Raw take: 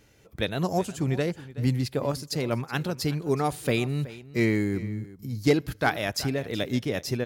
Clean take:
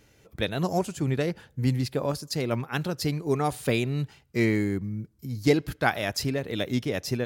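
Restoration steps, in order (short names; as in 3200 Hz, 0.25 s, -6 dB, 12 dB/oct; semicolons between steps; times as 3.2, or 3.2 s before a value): clip repair -11.5 dBFS; inverse comb 0.374 s -17.5 dB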